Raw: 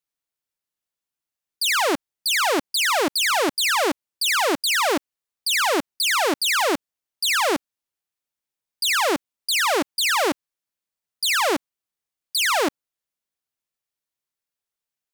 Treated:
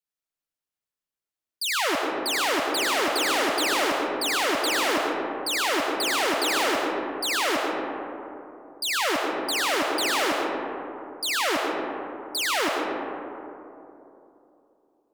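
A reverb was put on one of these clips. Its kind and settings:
comb and all-pass reverb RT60 3.1 s, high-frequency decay 0.3×, pre-delay 60 ms, DRR −1 dB
level −6 dB

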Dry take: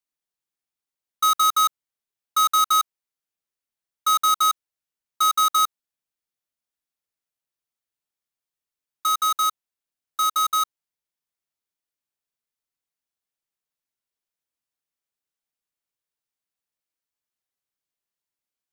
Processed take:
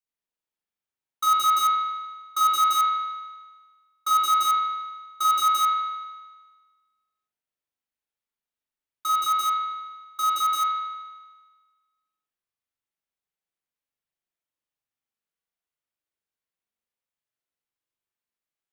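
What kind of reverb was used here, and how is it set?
spring reverb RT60 1.4 s, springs 41 ms, chirp 45 ms, DRR −4.5 dB
level −6.5 dB

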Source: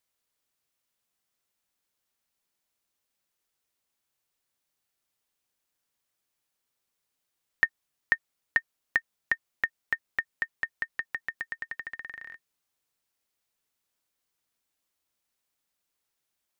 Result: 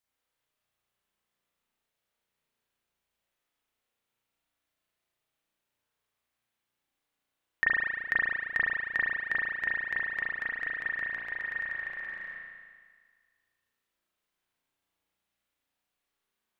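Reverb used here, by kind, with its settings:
spring reverb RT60 1.7 s, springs 34 ms, chirp 30 ms, DRR −7.5 dB
level −6 dB

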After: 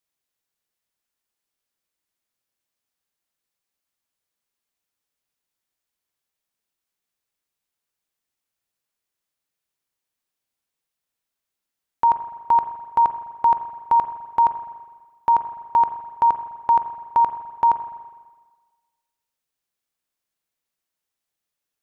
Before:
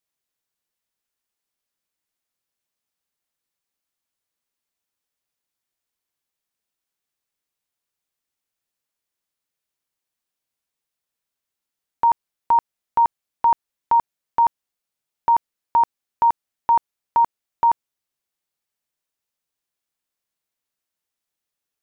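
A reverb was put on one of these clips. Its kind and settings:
spring reverb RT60 1.4 s, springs 41/51 ms, chirp 65 ms, DRR 9.5 dB

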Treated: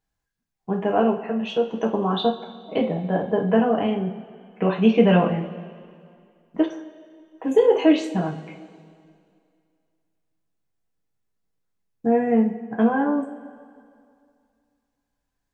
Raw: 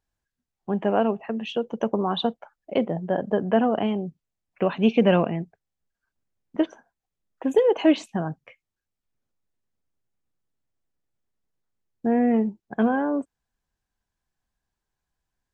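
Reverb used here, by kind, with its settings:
coupled-rooms reverb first 0.35 s, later 2.3 s, from −17 dB, DRR −1 dB
level −1.5 dB

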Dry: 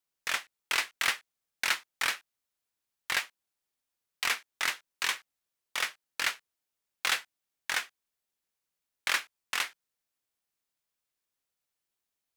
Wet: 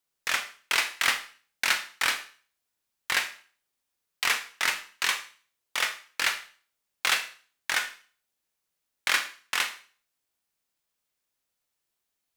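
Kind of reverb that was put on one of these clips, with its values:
four-comb reverb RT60 0.42 s, combs from 26 ms, DRR 7.5 dB
level +3.5 dB

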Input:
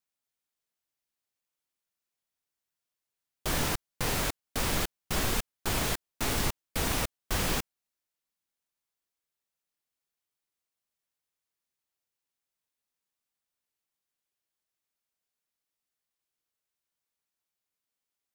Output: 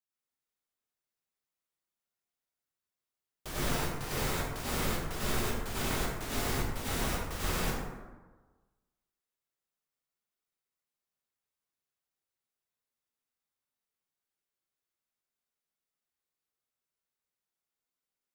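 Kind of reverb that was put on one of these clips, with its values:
dense smooth reverb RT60 1.3 s, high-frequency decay 0.45×, pre-delay 80 ms, DRR −9 dB
level −11.5 dB

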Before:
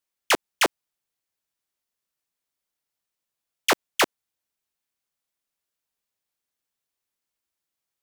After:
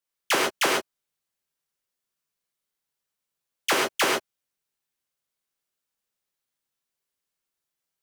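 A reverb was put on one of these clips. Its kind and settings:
reverb whose tail is shaped and stops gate 160 ms flat, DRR −3 dB
level −4.5 dB

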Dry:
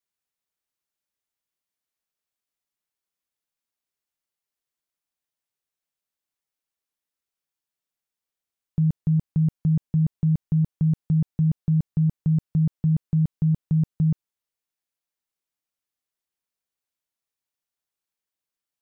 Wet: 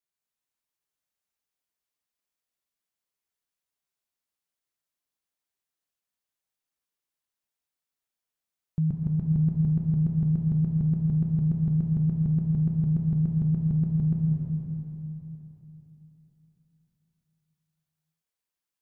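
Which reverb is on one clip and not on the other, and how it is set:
dense smooth reverb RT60 3.7 s, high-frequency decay 0.95×, pre-delay 115 ms, DRR −1.5 dB
level −4.5 dB

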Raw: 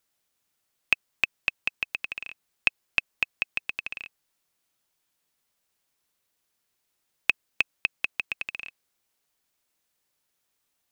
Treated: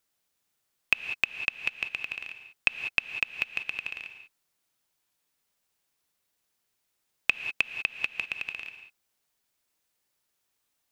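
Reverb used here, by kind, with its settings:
reverb whose tail is shaped and stops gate 220 ms rising, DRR 8 dB
level −1.5 dB

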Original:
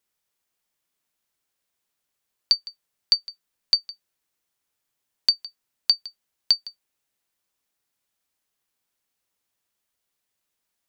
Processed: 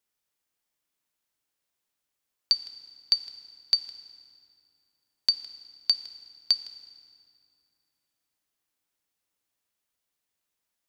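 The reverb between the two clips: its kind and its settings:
feedback delay network reverb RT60 2.5 s, low-frequency decay 1.35×, high-frequency decay 0.75×, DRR 11.5 dB
level −3.5 dB

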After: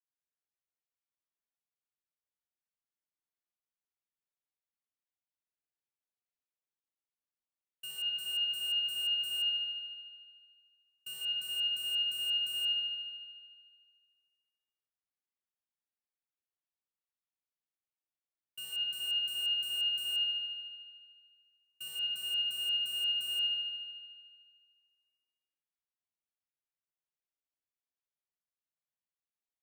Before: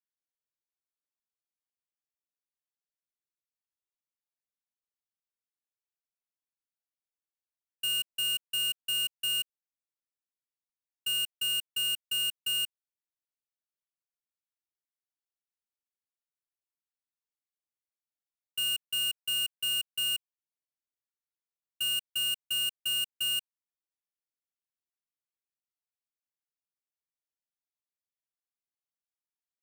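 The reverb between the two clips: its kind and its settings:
spring reverb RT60 1.9 s, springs 60 ms, chirp 45 ms, DRR −8 dB
level −12.5 dB

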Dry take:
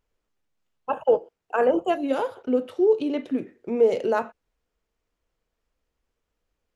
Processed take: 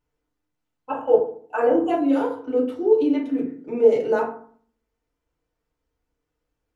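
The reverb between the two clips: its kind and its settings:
feedback delay network reverb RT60 0.5 s, low-frequency decay 1.4×, high-frequency decay 0.45×, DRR −5 dB
level −6.5 dB

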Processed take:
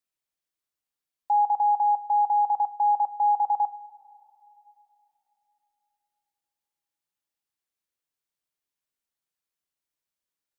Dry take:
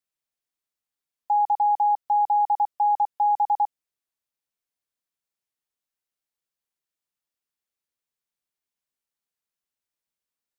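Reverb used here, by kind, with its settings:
coupled-rooms reverb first 0.33 s, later 3.5 s, from −19 dB, DRR 11 dB
level −1 dB

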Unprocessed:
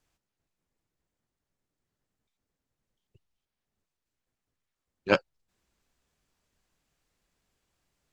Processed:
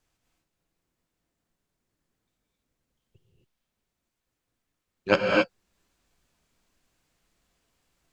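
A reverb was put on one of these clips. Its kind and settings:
reverb whose tail is shaped and stops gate 290 ms rising, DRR −2 dB
level +1 dB

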